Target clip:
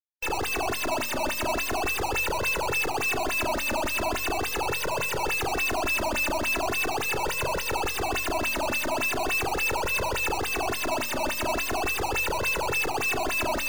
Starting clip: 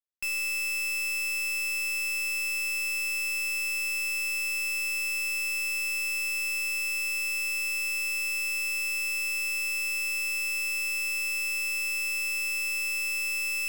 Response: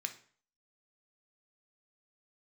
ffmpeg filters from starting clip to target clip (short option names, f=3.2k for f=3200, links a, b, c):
-filter_complex "[0:a]asplit=2[a][b];[1:a]atrim=start_sample=2205,adelay=76[c];[b][c]afir=irnorm=-1:irlink=0,volume=-13dB[d];[a][d]amix=inputs=2:normalize=0,acontrast=70,highshelf=f=2.9k:g=-5,acrusher=samples=15:mix=1:aa=0.000001:lfo=1:lforange=24:lforate=3.5,afftdn=nr=32:nf=-43,bandreject=f=47.17:t=h:w=4,bandreject=f=94.34:t=h:w=4,bandreject=f=141.51:t=h:w=4,bandreject=f=188.68:t=h:w=4,bandreject=f=235.85:t=h:w=4,bandreject=f=283.02:t=h:w=4,flanger=delay=1.9:depth=1.5:regen=6:speed=0.4:shape=triangular"